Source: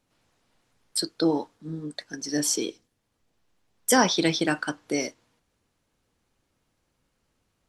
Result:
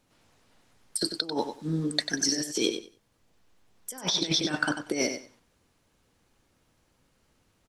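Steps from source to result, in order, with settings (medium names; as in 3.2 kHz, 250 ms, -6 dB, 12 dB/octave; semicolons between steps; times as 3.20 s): 0.98–2.69 s: treble shelf 2.2 kHz +7 dB; compressor with a negative ratio -28 dBFS, ratio -0.5; feedback delay 94 ms, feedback 18%, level -8.5 dB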